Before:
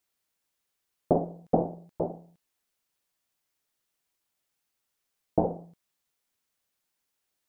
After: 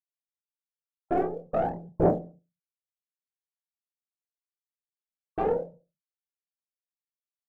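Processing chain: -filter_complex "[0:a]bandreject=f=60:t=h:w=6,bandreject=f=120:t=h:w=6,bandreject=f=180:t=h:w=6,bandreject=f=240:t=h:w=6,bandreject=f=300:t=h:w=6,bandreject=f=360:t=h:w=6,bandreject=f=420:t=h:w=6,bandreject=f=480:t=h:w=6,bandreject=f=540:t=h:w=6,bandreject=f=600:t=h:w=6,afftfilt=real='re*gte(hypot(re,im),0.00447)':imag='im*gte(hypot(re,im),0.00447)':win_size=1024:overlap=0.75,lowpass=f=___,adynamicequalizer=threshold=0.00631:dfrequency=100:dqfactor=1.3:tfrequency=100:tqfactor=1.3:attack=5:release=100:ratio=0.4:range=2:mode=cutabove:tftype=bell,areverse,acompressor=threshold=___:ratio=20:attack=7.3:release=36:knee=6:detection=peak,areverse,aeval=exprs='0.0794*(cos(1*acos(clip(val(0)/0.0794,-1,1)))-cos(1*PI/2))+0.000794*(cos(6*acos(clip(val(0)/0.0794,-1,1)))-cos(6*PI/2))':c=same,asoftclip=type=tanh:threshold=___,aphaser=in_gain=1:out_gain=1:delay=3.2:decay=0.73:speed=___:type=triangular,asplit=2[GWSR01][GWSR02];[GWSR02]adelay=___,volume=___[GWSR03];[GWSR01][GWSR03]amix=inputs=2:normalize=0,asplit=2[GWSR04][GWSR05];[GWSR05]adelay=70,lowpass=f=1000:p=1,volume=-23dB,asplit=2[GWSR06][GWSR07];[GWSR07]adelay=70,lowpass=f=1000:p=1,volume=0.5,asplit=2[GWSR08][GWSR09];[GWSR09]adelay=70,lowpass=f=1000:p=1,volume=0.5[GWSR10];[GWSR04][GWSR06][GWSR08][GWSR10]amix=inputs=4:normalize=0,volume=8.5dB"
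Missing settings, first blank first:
1300, -33dB, -31.5dB, 0.48, 27, -5.5dB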